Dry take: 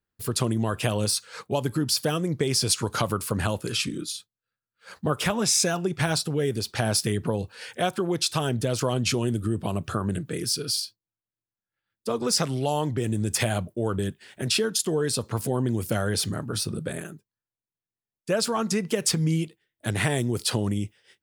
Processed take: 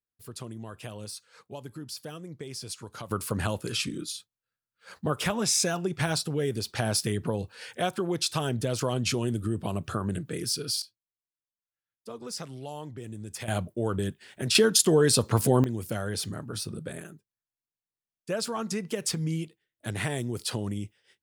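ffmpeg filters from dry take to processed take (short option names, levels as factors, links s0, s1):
-af "asetnsamples=n=441:p=0,asendcmd='3.11 volume volume -3dB;10.82 volume volume -13.5dB;13.48 volume volume -2dB;14.55 volume volume 4.5dB;15.64 volume volume -6dB',volume=0.178"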